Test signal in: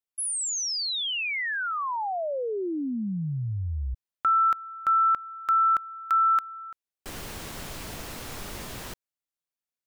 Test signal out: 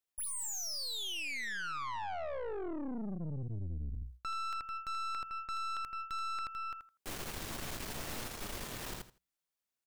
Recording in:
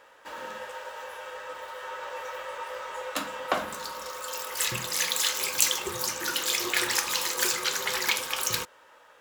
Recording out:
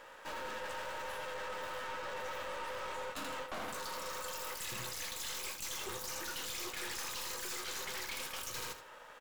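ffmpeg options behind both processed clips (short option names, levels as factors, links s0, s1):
-af "bandreject=f=60:t=h:w=6,bandreject=f=120:t=h:w=6,bandreject=f=180:t=h:w=6,aecho=1:1:81|162|243:0.376|0.0752|0.015,areverse,acompressor=threshold=0.0158:ratio=5:attack=0.74:release=93:knee=1:detection=rms,areverse,aeval=exprs='(tanh(126*val(0)+0.7)-tanh(0.7))/126':c=same,volume=1.78"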